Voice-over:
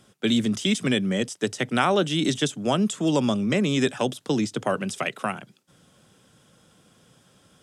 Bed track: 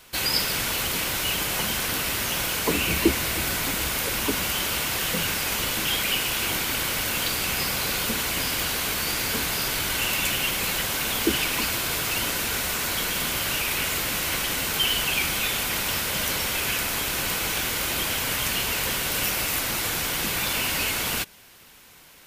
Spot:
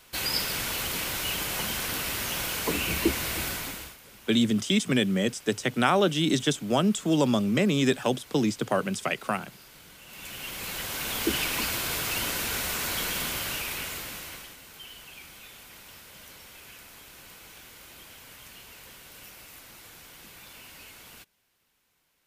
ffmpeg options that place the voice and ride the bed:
ffmpeg -i stem1.wav -i stem2.wav -filter_complex "[0:a]adelay=4050,volume=-1dB[link_01];[1:a]volume=17dB,afade=type=out:start_time=3.42:duration=0.55:silence=0.0944061,afade=type=in:start_time=10.06:duration=1.32:silence=0.0841395,afade=type=out:start_time=13.1:duration=1.47:silence=0.11885[link_02];[link_01][link_02]amix=inputs=2:normalize=0" out.wav

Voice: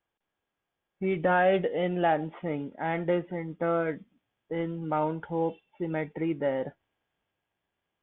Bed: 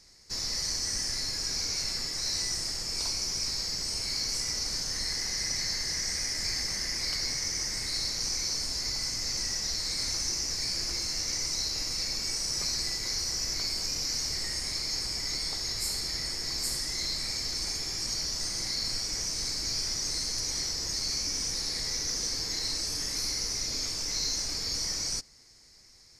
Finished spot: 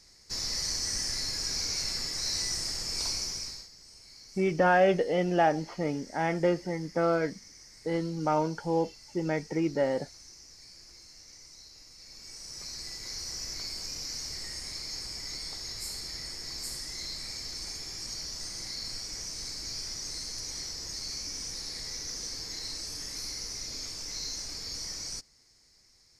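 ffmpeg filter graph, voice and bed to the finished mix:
ffmpeg -i stem1.wav -i stem2.wav -filter_complex "[0:a]adelay=3350,volume=1dB[link_01];[1:a]volume=13.5dB,afade=type=out:start_time=3.14:duration=0.55:silence=0.105925,afade=type=in:start_time=11.98:duration=1.35:silence=0.199526[link_02];[link_01][link_02]amix=inputs=2:normalize=0" out.wav

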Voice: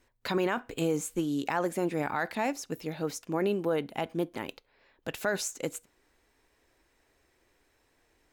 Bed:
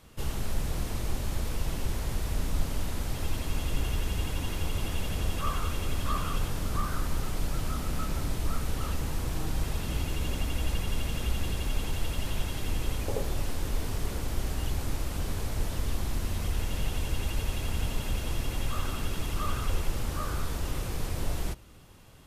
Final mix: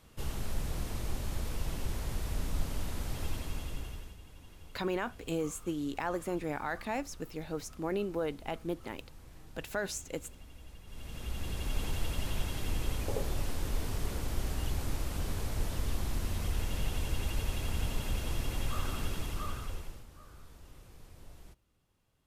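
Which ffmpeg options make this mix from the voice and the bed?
ffmpeg -i stem1.wav -i stem2.wav -filter_complex "[0:a]adelay=4500,volume=-5dB[link_01];[1:a]volume=14dB,afade=type=out:start_time=3.26:duration=0.91:silence=0.141254,afade=type=in:start_time=10.85:duration=0.99:silence=0.11885,afade=type=out:start_time=19.05:duration=1.01:silence=0.11885[link_02];[link_01][link_02]amix=inputs=2:normalize=0" out.wav

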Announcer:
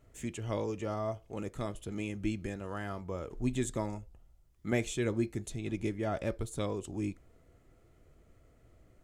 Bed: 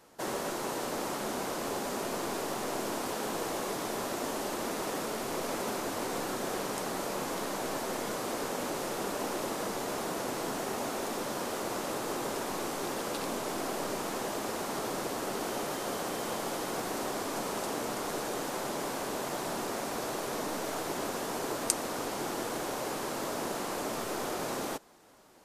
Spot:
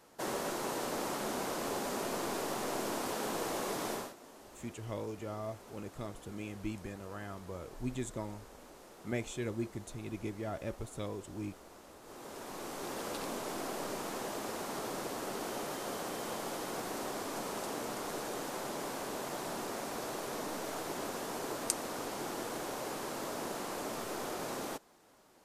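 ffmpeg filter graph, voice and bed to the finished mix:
ffmpeg -i stem1.wav -i stem2.wav -filter_complex "[0:a]adelay=4400,volume=-5.5dB[link_01];[1:a]volume=13.5dB,afade=type=out:start_time=3.92:duration=0.22:silence=0.125893,afade=type=in:start_time=12.01:duration=1.04:silence=0.16788[link_02];[link_01][link_02]amix=inputs=2:normalize=0" out.wav

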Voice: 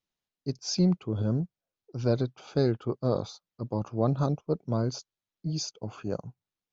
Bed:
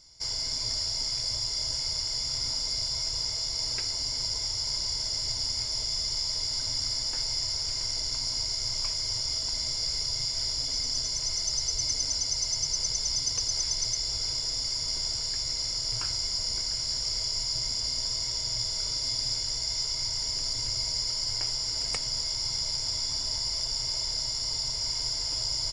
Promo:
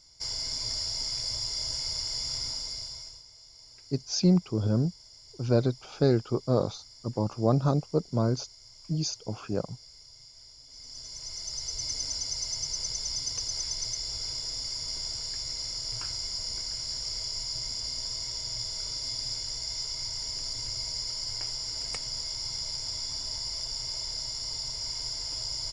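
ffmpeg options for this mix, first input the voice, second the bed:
ffmpeg -i stem1.wav -i stem2.wav -filter_complex "[0:a]adelay=3450,volume=2dB[link_01];[1:a]volume=15.5dB,afade=type=out:start_time=2.33:duration=0.9:silence=0.105925,afade=type=in:start_time=10.67:duration=1.31:silence=0.133352[link_02];[link_01][link_02]amix=inputs=2:normalize=0" out.wav

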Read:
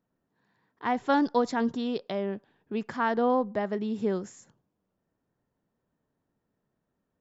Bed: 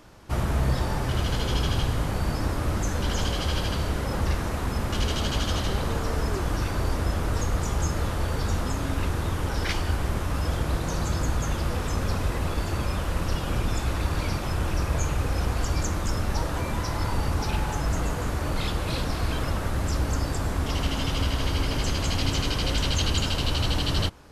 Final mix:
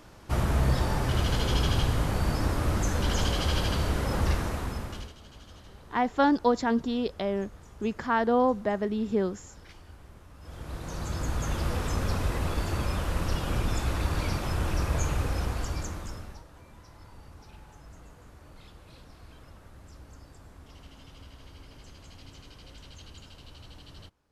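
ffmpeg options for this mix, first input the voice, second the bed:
ffmpeg -i stem1.wav -i stem2.wav -filter_complex "[0:a]adelay=5100,volume=1.5dB[link_01];[1:a]volume=21dB,afade=type=out:start_time=4.31:duration=0.82:silence=0.0707946,afade=type=in:start_time=10.39:duration=1.27:silence=0.0841395,afade=type=out:start_time=15.15:duration=1.28:silence=0.0841395[link_02];[link_01][link_02]amix=inputs=2:normalize=0" out.wav

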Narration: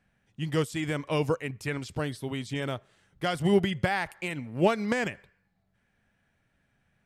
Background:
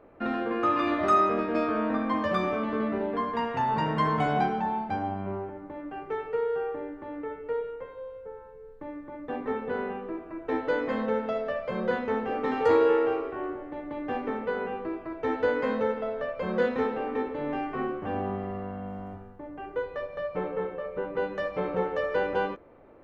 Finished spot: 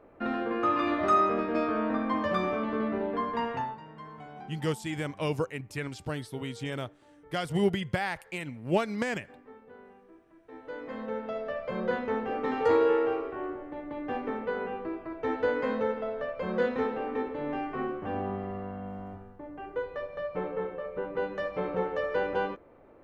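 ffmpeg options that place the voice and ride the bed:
ffmpeg -i stem1.wav -i stem2.wav -filter_complex "[0:a]adelay=4100,volume=-3dB[link_01];[1:a]volume=16.5dB,afade=type=out:start_time=3.51:duration=0.26:silence=0.11885,afade=type=in:start_time=10.51:duration=1.24:silence=0.125893[link_02];[link_01][link_02]amix=inputs=2:normalize=0" out.wav

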